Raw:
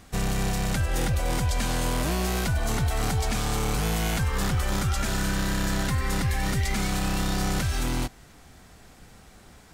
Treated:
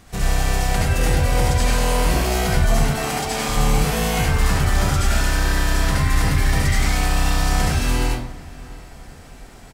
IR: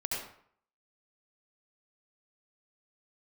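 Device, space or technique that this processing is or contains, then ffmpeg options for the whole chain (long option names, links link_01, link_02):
bathroom: -filter_complex "[0:a]asettb=1/sr,asplit=3[link_01][link_02][link_03];[link_01]atrim=end=2.834[link_04];[link_02]atrim=start=2.83:end=3.49,asetpts=PTS-STARTPTS,afade=type=in:duration=0.004:curve=qsin,afade=type=out:start_time=0.656:duration=0.004:curve=qsin,highpass=240[link_05];[link_03]atrim=start=3.486[link_06];[link_04][link_05]acrossfade=duration=0.004:curve1=hsin:curve2=qsin[link_07];[link_07][link_06]acrossfade=duration=0.004:curve1=qsin:curve2=hsin[link_08];[1:a]atrim=start_sample=2205[link_09];[link_08][link_09]afir=irnorm=-1:irlink=0,asplit=2[link_10][link_11];[link_11]adelay=703,lowpass=frequency=2300:poles=1,volume=-20dB,asplit=2[link_12][link_13];[link_13]adelay=703,lowpass=frequency=2300:poles=1,volume=0.47,asplit=2[link_14][link_15];[link_15]adelay=703,lowpass=frequency=2300:poles=1,volume=0.47,asplit=2[link_16][link_17];[link_17]adelay=703,lowpass=frequency=2300:poles=1,volume=0.47[link_18];[link_10][link_12][link_14][link_16][link_18]amix=inputs=5:normalize=0,volume=3dB"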